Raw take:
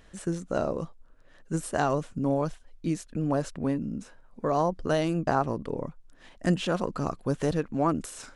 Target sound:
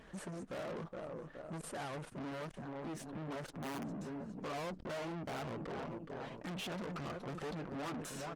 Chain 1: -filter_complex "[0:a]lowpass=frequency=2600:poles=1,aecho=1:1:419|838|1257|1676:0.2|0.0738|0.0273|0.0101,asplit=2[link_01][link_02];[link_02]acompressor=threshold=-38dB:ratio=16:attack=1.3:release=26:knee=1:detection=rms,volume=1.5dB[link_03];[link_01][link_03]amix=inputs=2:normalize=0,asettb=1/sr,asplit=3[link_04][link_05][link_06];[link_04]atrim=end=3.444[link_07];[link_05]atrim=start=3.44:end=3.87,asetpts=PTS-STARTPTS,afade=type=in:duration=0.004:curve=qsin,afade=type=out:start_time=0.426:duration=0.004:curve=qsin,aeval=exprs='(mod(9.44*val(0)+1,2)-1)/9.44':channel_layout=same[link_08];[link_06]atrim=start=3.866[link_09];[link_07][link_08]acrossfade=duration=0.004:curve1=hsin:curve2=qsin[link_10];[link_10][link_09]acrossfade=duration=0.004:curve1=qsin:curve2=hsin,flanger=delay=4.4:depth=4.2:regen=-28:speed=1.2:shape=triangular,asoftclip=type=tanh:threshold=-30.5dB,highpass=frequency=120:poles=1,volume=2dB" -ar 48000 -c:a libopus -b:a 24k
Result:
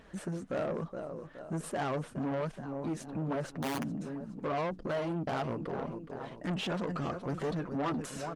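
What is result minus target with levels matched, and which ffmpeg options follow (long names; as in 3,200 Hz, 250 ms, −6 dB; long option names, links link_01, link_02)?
soft clipping: distortion −5 dB
-filter_complex "[0:a]lowpass=frequency=2600:poles=1,aecho=1:1:419|838|1257|1676:0.2|0.0738|0.0273|0.0101,asplit=2[link_01][link_02];[link_02]acompressor=threshold=-38dB:ratio=16:attack=1.3:release=26:knee=1:detection=rms,volume=1.5dB[link_03];[link_01][link_03]amix=inputs=2:normalize=0,asettb=1/sr,asplit=3[link_04][link_05][link_06];[link_04]atrim=end=3.444[link_07];[link_05]atrim=start=3.44:end=3.87,asetpts=PTS-STARTPTS,afade=type=in:duration=0.004:curve=qsin,afade=type=out:start_time=0.426:duration=0.004:curve=qsin,aeval=exprs='(mod(9.44*val(0)+1,2)-1)/9.44':channel_layout=same[link_08];[link_06]atrim=start=3.866[link_09];[link_07][link_08]acrossfade=duration=0.004:curve1=hsin:curve2=qsin[link_10];[link_10][link_09]acrossfade=duration=0.004:curve1=qsin:curve2=hsin,flanger=delay=4.4:depth=4.2:regen=-28:speed=1.2:shape=triangular,asoftclip=type=tanh:threshold=-41.5dB,highpass=frequency=120:poles=1,volume=2dB" -ar 48000 -c:a libopus -b:a 24k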